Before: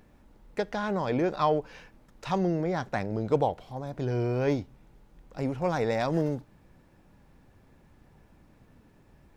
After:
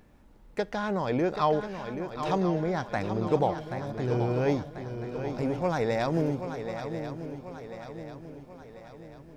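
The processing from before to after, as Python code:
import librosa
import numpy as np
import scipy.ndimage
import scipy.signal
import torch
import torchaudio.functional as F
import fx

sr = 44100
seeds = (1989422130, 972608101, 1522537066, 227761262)

y = fx.echo_swing(x, sr, ms=1040, ratio=3, feedback_pct=48, wet_db=-9.0)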